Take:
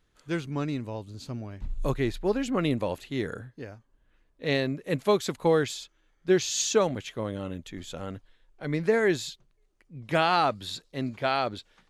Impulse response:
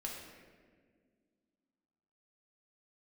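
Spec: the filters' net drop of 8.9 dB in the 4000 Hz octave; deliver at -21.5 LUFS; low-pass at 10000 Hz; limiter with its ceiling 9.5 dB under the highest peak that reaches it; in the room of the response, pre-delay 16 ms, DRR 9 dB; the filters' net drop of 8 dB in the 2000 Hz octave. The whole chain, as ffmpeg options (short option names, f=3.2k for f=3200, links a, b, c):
-filter_complex "[0:a]lowpass=10k,equalizer=f=2k:t=o:g=-9,equalizer=f=4k:t=o:g=-8,alimiter=limit=-21.5dB:level=0:latency=1,asplit=2[a][b];[1:a]atrim=start_sample=2205,adelay=16[c];[b][c]afir=irnorm=-1:irlink=0,volume=-8.5dB[d];[a][d]amix=inputs=2:normalize=0,volume=11.5dB"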